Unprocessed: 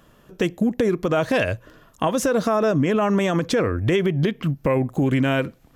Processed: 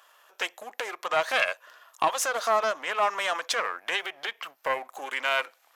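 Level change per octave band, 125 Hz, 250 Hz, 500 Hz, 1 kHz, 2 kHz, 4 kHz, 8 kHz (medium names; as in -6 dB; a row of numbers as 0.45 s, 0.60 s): under -35 dB, -28.5 dB, -10.0 dB, 0.0 dB, +1.0 dB, +1.5 dB, +0.5 dB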